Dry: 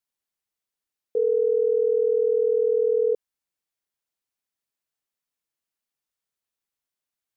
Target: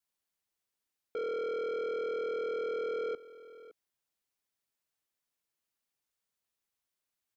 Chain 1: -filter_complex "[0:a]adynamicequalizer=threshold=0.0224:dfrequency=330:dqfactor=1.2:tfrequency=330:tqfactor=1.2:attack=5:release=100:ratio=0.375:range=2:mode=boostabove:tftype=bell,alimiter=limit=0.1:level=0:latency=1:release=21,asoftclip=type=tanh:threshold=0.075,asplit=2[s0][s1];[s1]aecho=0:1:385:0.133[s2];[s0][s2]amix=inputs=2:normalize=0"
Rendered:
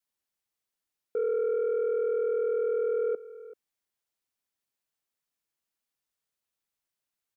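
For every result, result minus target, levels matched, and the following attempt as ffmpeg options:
saturation: distortion -10 dB; echo 178 ms early
-filter_complex "[0:a]adynamicequalizer=threshold=0.0224:dfrequency=330:dqfactor=1.2:tfrequency=330:tqfactor=1.2:attack=5:release=100:ratio=0.375:range=2:mode=boostabove:tftype=bell,alimiter=limit=0.1:level=0:latency=1:release=21,asoftclip=type=tanh:threshold=0.0224,asplit=2[s0][s1];[s1]aecho=0:1:385:0.133[s2];[s0][s2]amix=inputs=2:normalize=0"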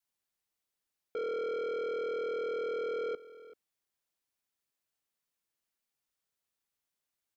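echo 178 ms early
-filter_complex "[0:a]adynamicequalizer=threshold=0.0224:dfrequency=330:dqfactor=1.2:tfrequency=330:tqfactor=1.2:attack=5:release=100:ratio=0.375:range=2:mode=boostabove:tftype=bell,alimiter=limit=0.1:level=0:latency=1:release=21,asoftclip=type=tanh:threshold=0.0224,asplit=2[s0][s1];[s1]aecho=0:1:563:0.133[s2];[s0][s2]amix=inputs=2:normalize=0"

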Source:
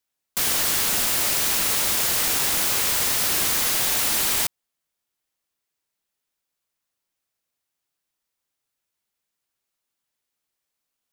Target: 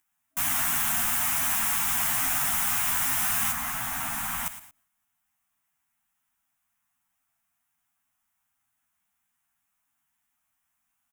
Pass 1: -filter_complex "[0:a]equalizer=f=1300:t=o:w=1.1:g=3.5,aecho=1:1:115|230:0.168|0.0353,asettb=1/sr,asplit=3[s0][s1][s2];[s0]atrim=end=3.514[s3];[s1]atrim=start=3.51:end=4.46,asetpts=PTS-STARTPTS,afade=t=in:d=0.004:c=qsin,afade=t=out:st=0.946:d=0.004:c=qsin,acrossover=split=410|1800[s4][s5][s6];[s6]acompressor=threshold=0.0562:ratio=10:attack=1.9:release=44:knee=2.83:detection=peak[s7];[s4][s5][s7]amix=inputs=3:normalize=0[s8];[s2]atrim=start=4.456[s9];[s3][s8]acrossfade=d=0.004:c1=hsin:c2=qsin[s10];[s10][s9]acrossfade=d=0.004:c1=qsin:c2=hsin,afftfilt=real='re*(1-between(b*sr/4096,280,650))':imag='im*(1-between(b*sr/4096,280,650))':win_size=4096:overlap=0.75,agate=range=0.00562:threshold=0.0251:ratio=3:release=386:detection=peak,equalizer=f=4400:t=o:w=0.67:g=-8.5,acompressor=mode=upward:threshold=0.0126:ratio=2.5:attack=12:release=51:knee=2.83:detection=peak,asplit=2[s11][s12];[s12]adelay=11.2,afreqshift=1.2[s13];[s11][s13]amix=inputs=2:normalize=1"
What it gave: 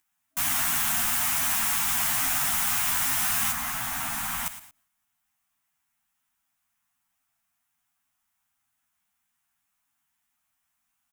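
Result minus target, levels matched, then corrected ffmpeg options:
4 kHz band +2.5 dB
-filter_complex "[0:a]equalizer=f=1300:t=o:w=1.1:g=3.5,aecho=1:1:115|230:0.168|0.0353,asettb=1/sr,asplit=3[s0][s1][s2];[s0]atrim=end=3.514[s3];[s1]atrim=start=3.51:end=4.46,asetpts=PTS-STARTPTS,afade=t=in:d=0.004:c=qsin,afade=t=out:st=0.946:d=0.004:c=qsin,acrossover=split=410|1800[s4][s5][s6];[s6]acompressor=threshold=0.0562:ratio=10:attack=1.9:release=44:knee=2.83:detection=peak[s7];[s4][s5][s7]amix=inputs=3:normalize=0[s8];[s2]atrim=start=4.456[s9];[s3][s8]acrossfade=d=0.004:c1=hsin:c2=qsin[s10];[s10][s9]acrossfade=d=0.004:c1=qsin:c2=hsin,afftfilt=real='re*(1-between(b*sr/4096,280,650))':imag='im*(1-between(b*sr/4096,280,650))':win_size=4096:overlap=0.75,agate=range=0.00562:threshold=0.0251:ratio=3:release=386:detection=peak,equalizer=f=4400:t=o:w=0.67:g=-14.5,acompressor=mode=upward:threshold=0.0126:ratio=2.5:attack=12:release=51:knee=2.83:detection=peak,asplit=2[s11][s12];[s12]adelay=11.2,afreqshift=1.2[s13];[s11][s13]amix=inputs=2:normalize=1"

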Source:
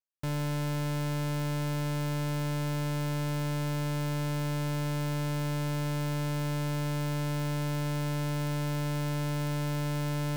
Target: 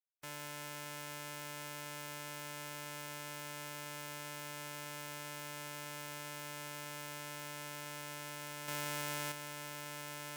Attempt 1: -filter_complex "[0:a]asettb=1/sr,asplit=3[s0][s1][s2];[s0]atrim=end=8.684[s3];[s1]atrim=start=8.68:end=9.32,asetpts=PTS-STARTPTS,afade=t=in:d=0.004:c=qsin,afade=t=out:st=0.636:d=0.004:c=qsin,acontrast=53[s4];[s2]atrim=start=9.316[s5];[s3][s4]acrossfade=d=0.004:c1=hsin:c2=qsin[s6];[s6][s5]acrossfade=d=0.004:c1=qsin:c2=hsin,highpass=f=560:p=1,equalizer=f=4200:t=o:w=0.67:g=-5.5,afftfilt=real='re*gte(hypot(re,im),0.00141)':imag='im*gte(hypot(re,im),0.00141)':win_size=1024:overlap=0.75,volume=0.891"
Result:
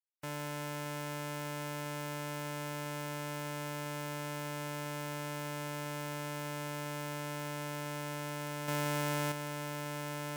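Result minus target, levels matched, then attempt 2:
500 Hz band +4.0 dB
-filter_complex "[0:a]asettb=1/sr,asplit=3[s0][s1][s2];[s0]atrim=end=8.684[s3];[s1]atrim=start=8.68:end=9.32,asetpts=PTS-STARTPTS,afade=t=in:d=0.004:c=qsin,afade=t=out:st=0.636:d=0.004:c=qsin,acontrast=53[s4];[s2]atrim=start=9.316[s5];[s3][s4]acrossfade=d=0.004:c1=hsin:c2=qsin[s6];[s6][s5]acrossfade=d=0.004:c1=qsin:c2=hsin,highpass=f=2100:p=1,equalizer=f=4200:t=o:w=0.67:g=-5.5,afftfilt=real='re*gte(hypot(re,im),0.00141)':imag='im*gte(hypot(re,im),0.00141)':win_size=1024:overlap=0.75,volume=0.891"

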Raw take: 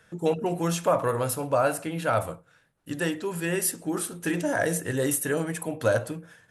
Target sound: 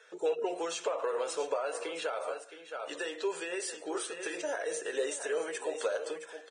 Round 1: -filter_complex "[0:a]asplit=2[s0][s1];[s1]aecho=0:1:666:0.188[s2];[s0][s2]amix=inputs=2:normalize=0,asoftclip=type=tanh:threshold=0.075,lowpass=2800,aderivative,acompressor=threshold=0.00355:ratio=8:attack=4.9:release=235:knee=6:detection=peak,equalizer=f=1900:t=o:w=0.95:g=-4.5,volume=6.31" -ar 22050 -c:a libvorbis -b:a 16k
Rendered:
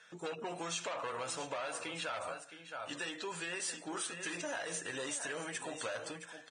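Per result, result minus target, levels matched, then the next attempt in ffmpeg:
saturation: distortion +13 dB; 500 Hz band -5.5 dB
-filter_complex "[0:a]asplit=2[s0][s1];[s1]aecho=0:1:666:0.188[s2];[s0][s2]amix=inputs=2:normalize=0,asoftclip=type=tanh:threshold=0.251,lowpass=2800,aderivative,acompressor=threshold=0.00355:ratio=8:attack=4.9:release=235:knee=6:detection=peak,equalizer=f=1900:t=o:w=0.95:g=-4.5,volume=6.31" -ar 22050 -c:a libvorbis -b:a 16k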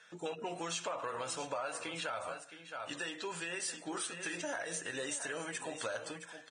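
500 Hz band -5.0 dB
-filter_complex "[0:a]asplit=2[s0][s1];[s1]aecho=0:1:666:0.188[s2];[s0][s2]amix=inputs=2:normalize=0,asoftclip=type=tanh:threshold=0.251,lowpass=2800,aderivative,acompressor=threshold=0.00355:ratio=8:attack=4.9:release=235:knee=6:detection=peak,highpass=f=430:t=q:w=4.8,equalizer=f=1900:t=o:w=0.95:g=-4.5,volume=6.31" -ar 22050 -c:a libvorbis -b:a 16k

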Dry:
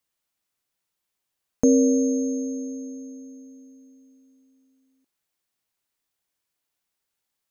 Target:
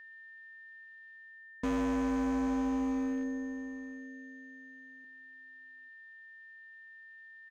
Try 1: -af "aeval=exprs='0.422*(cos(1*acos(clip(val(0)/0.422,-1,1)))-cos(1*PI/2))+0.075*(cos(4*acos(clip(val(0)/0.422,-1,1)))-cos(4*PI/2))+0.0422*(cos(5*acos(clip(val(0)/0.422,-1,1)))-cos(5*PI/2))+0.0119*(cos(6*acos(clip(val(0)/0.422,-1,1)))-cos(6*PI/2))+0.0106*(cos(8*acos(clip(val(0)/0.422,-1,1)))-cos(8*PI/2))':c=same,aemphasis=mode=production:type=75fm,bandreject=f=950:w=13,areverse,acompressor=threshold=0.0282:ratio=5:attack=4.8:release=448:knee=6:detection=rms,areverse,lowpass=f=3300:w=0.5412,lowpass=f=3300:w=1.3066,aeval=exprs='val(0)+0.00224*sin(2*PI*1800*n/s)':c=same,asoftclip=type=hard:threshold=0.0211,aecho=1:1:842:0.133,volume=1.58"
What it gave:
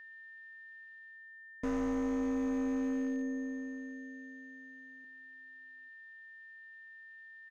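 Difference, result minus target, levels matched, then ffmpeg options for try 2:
compression: peak gain reduction +7 dB
-af "aeval=exprs='0.422*(cos(1*acos(clip(val(0)/0.422,-1,1)))-cos(1*PI/2))+0.075*(cos(4*acos(clip(val(0)/0.422,-1,1)))-cos(4*PI/2))+0.0422*(cos(5*acos(clip(val(0)/0.422,-1,1)))-cos(5*PI/2))+0.0119*(cos(6*acos(clip(val(0)/0.422,-1,1)))-cos(6*PI/2))+0.0106*(cos(8*acos(clip(val(0)/0.422,-1,1)))-cos(8*PI/2))':c=same,aemphasis=mode=production:type=75fm,bandreject=f=950:w=13,areverse,acompressor=threshold=0.075:ratio=5:attack=4.8:release=448:knee=6:detection=rms,areverse,lowpass=f=3300:w=0.5412,lowpass=f=3300:w=1.3066,aeval=exprs='val(0)+0.00224*sin(2*PI*1800*n/s)':c=same,asoftclip=type=hard:threshold=0.0211,aecho=1:1:842:0.133,volume=1.58"

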